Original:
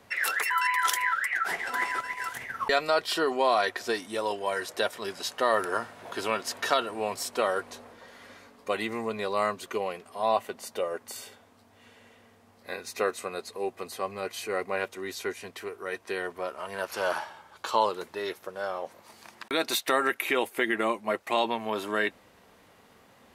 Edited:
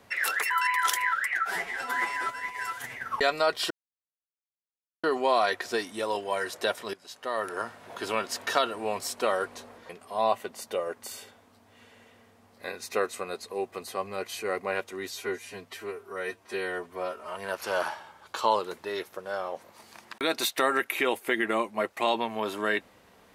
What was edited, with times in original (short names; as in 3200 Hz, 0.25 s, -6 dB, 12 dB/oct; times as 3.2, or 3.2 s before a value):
1.42–2.45 stretch 1.5×
3.19 insert silence 1.33 s
5.09–6.62 fade in equal-power, from -18.5 dB
8.05–9.94 cut
15.15–16.64 stretch 1.5×